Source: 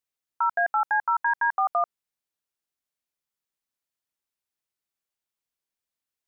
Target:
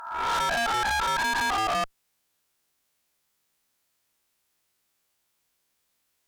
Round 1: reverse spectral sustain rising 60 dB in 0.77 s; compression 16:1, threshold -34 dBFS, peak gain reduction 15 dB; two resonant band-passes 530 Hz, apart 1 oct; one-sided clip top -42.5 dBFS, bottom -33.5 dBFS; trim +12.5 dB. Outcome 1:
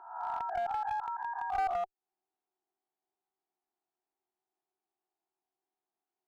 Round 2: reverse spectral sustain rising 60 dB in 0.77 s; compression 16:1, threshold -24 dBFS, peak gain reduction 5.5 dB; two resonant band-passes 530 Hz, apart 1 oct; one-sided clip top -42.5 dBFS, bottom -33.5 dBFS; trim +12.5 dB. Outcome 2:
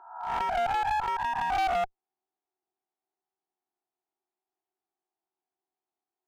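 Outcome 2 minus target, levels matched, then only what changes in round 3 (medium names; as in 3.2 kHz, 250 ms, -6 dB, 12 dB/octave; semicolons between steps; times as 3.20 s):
500 Hz band +3.5 dB
remove: two resonant band-passes 530 Hz, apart 1 oct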